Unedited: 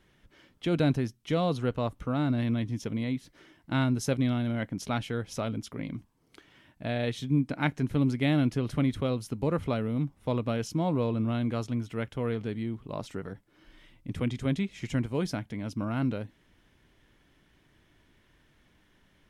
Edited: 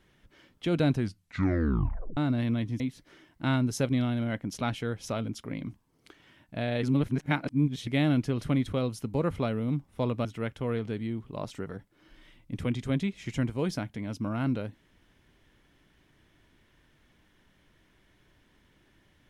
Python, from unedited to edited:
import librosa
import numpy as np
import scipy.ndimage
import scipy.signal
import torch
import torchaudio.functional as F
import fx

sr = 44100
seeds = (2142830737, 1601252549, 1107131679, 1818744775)

y = fx.edit(x, sr, fx.tape_stop(start_s=0.94, length_s=1.23),
    fx.cut(start_s=2.8, length_s=0.28),
    fx.reverse_span(start_s=7.11, length_s=1.04),
    fx.cut(start_s=10.53, length_s=1.28), tone=tone)